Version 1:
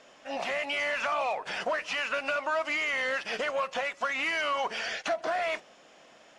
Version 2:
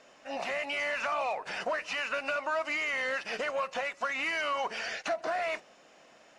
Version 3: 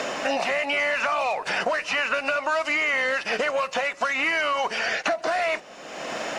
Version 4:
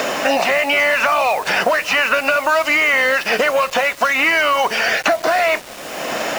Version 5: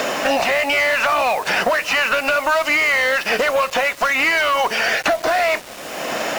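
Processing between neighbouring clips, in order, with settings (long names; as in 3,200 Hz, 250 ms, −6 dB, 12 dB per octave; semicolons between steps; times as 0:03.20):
notch filter 3,300 Hz, Q 9.9; level −2 dB
multiband upward and downward compressor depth 100%; level +7 dB
bit reduction 7 bits; level +8.5 dB
asymmetric clip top −13 dBFS; level −1 dB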